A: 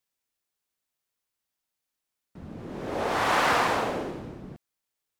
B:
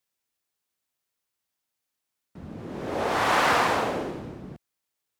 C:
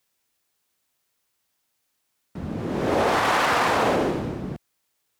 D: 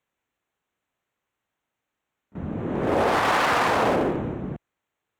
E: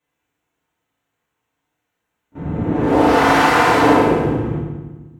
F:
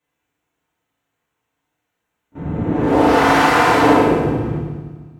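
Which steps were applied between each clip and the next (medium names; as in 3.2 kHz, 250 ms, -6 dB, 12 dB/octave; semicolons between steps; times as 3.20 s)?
high-pass 43 Hz; trim +1.5 dB
peak limiter -21.5 dBFS, peak gain reduction 11 dB; trim +9 dB
local Wiener filter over 9 samples; pre-echo 34 ms -20 dB
FDN reverb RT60 1.2 s, low-frequency decay 1.45×, high-frequency decay 0.85×, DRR -9 dB; trim -2.5 dB
thinning echo 152 ms, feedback 59%, high-pass 190 Hz, level -20.5 dB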